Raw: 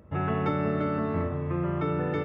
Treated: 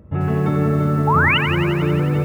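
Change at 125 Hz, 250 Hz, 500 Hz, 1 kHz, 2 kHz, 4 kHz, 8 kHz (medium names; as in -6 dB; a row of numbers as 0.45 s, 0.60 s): +12.5 dB, +9.0 dB, +7.0 dB, +11.0 dB, +18.5 dB, +23.5 dB, no reading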